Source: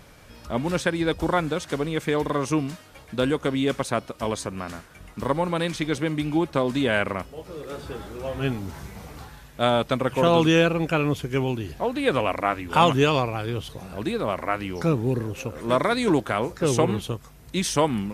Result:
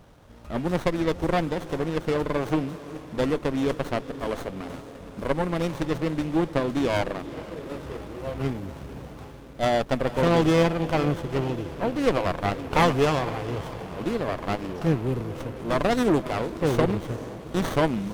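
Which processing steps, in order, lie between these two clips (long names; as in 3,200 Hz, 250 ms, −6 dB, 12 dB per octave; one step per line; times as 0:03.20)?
feedback delay with all-pass diffusion 462 ms, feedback 69%, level −15 dB
harmonic generator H 6 −17 dB, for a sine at −4.5 dBFS
windowed peak hold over 17 samples
level −2 dB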